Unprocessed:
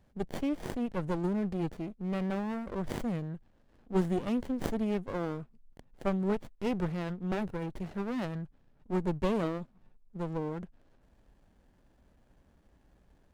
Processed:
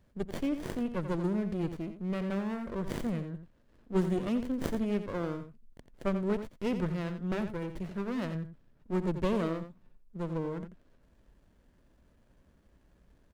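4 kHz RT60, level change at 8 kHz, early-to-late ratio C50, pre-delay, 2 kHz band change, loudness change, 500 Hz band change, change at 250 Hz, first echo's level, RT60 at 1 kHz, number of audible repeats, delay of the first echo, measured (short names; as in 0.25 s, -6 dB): none, n/a, none, none, +0.5 dB, 0.0 dB, 0.0 dB, +0.5 dB, -10.0 dB, none, 1, 87 ms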